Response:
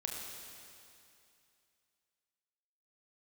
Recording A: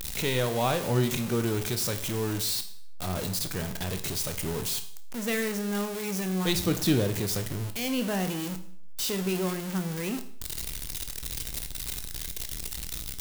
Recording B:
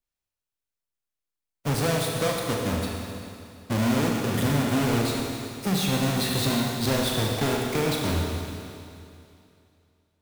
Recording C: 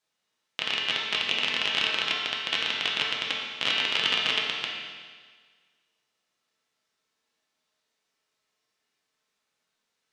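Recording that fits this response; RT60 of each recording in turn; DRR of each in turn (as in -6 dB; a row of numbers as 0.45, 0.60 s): B; 0.60, 2.6, 1.6 s; 7.5, -1.0, -3.5 dB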